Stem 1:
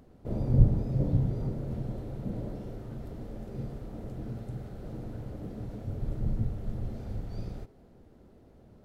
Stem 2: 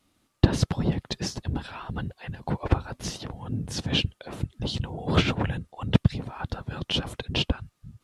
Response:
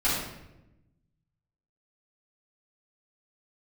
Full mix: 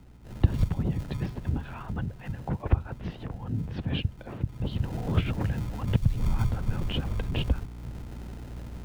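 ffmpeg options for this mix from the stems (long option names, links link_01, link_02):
-filter_complex "[0:a]acompressor=mode=upward:threshold=-35dB:ratio=2.5,aeval=exprs='val(0)+0.00708*(sin(2*PI*60*n/s)+sin(2*PI*2*60*n/s)/2+sin(2*PI*3*60*n/s)/3+sin(2*PI*4*60*n/s)/4+sin(2*PI*5*60*n/s)/5)':channel_layout=same,acrusher=samples=39:mix=1:aa=0.000001,volume=-2dB,afade=type=in:start_time=4.46:duration=0.56:silence=0.251189[link_01];[1:a]lowpass=frequency=2800:width=0.5412,lowpass=frequency=2800:width=1.3066,volume=-4dB[link_02];[link_01][link_02]amix=inputs=2:normalize=0,lowshelf=frequency=250:gain=6.5,acrossover=split=120|3000[link_03][link_04][link_05];[link_04]acompressor=threshold=-29dB:ratio=6[link_06];[link_03][link_06][link_05]amix=inputs=3:normalize=0"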